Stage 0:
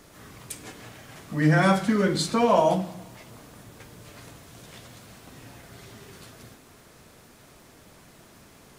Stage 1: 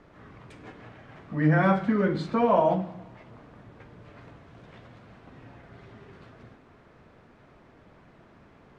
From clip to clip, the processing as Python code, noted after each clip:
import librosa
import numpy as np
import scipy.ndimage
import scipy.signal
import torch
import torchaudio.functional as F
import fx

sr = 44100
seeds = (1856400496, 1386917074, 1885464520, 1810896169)

y = scipy.signal.sosfilt(scipy.signal.butter(2, 2000.0, 'lowpass', fs=sr, output='sos'), x)
y = F.gain(torch.from_numpy(y), -1.5).numpy()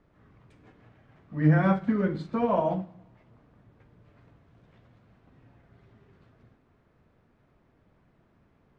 y = fx.low_shelf(x, sr, hz=230.0, db=7.5)
y = fx.upward_expand(y, sr, threshold_db=-35.0, expansion=1.5)
y = F.gain(torch.from_numpy(y), -2.5).numpy()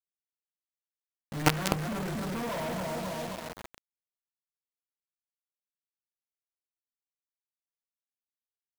y = fx.echo_feedback(x, sr, ms=266, feedback_pct=52, wet_db=-6)
y = fx.quant_companded(y, sr, bits=2)
y = F.gain(torch.from_numpy(y), -8.0).numpy()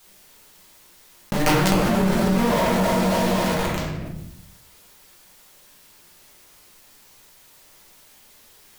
y = fx.room_shoebox(x, sr, seeds[0], volume_m3=100.0, walls='mixed', distance_m=1.3)
y = fx.env_flatten(y, sr, amount_pct=70)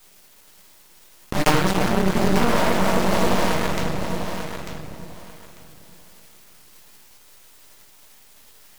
y = np.maximum(x, 0.0)
y = fx.echo_feedback(y, sr, ms=895, feedback_pct=20, wet_db=-8)
y = fx.doppler_dist(y, sr, depth_ms=0.42)
y = F.gain(torch.from_numpy(y), 4.0).numpy()